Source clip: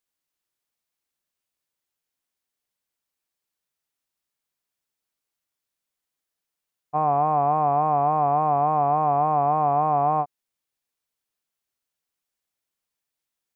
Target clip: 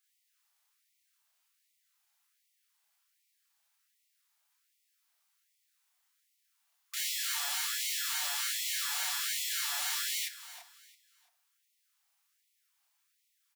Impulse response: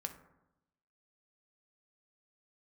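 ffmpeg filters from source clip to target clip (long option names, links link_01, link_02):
-filter_complex "[0:a]highpass=frequency=410:width=0.5412,highpass=frequency=410:width=1.3066,acontrast=25,alimiter=limit=-18dB:level=0:latency=1:release=45,aeval=exprs='(mod(44.7*val(0)+1,2)-1)/44.7':channel_layout=same,aecho=1:1:335|670|1005:0.178|0.0551|0.0171,asplit=2[link_01][link_02];[1:a]atrim=start_sample=2205,adelay=31[link_03];[link_02][link_03]afir=irnorm=-1:irlink=0,volume=3.5dB[link_04];[link_01][link_04]amix=inputs=2:normalize=0,afftfilt=real='re*gte(b*sr/1024,600*pow(1900/600,0.5+0.5*sin(2*PI*1.3*pts/sr)))':imag='im*gte(b*sr/1024,600*pow(1900/600,0.5+0.5*sin(2*PI*1.3*pts/sr)))':win_size=1024:overlap=0.75"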